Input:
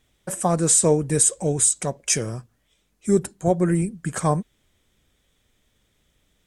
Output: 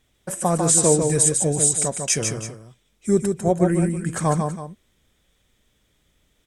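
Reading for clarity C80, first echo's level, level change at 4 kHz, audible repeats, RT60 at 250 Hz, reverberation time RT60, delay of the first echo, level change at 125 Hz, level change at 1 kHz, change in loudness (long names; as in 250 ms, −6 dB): no reverb audible, −5.0 dB, +1.5 dB, 2, no reverb audible, no reverb audible, 148 ms, +1.5 dB, +1.5 dB, +1.0 dB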